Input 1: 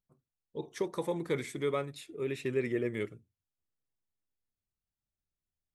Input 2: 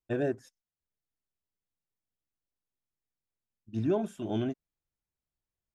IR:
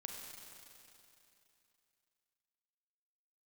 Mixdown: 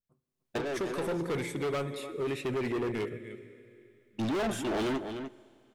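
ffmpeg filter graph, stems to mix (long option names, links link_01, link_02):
-filter_complex "[0:a]dynaudnorm=framelen=210:gausssize=3:maxgain=9.5dB,volume=-6.5dB,asplit=4[link_01][link_02][link_03][link_04];[link_02]volume=-6.5dB[link_05];[link_03]volume=-13.5dB[link_06];[1:a]agate=range=-19dB:threshold=-45dB:ratio=16:detection=peak,asplit=2[link_07][link_08];[link_08]highpass=frequency=720:poles=1,volume=28dB,asoftclip=type=tanh:threshold=-18dB[link_09];[link_07][link_09]amix=inputs=2:normalize=0,lowpass=frequency=6500:poles=1,volume=-6dB,adelay=450,volume=-3dB,asplit=3[link_10][link_11][link_12];[link_11]volume=-14dB[link_13];[link_12]volume=-10dB[link_14];[link_04]apad=whole_len=273348[link_15];[link_10][link_15]sidechaincompress=threshold=-41dB:ratio=8:attack=37:release=1090[link_16];[2:a]atrim=start_sample=2205[link_17];[link_05][link_13]amix=inputs=2:normalize=0[link_18];[link_18][link_17]afir=irnorm=-1:irlink=0[link_19];[link_06][link_14]amix=inputs=2:normalize=0,aecho=0:1:300:1[link_20];[link_01][link_16][link_19][link_20]amix=inputs=4:normalize=0,adynamicequalizer=threshold=0.00158:dfrequency=6400:dqfactor=0.87:tfrequency=6400:tqfactor=0.87:attack=5:release=100:ratio=0.375:range=2.5:mode=cutabove:tftype=bell,asoftclip=type=hard:threshold=-28.5dB"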